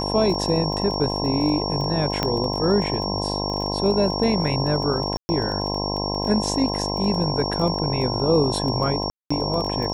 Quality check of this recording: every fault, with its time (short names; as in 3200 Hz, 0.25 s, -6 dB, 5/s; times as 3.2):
buzz 50 Hz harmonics 21 -27 dBFS
crackle 16/s -27 dBFS
tone 5500 Hz -28 dBFS
2.23 pop -8 dBFS
5.17–5.29 gap 0.12 s
9.1–9.3 gap 0.205 s